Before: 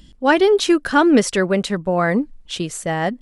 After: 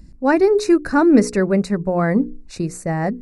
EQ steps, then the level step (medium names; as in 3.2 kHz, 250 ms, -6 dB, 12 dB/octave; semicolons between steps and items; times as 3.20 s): Butterworth band-stop 3.2 kHz, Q 2.2; bass shelf 440 Hz +10.5 dB; hum notches 60/120/180/240/300/360/420/480 Hz; -5.0 dB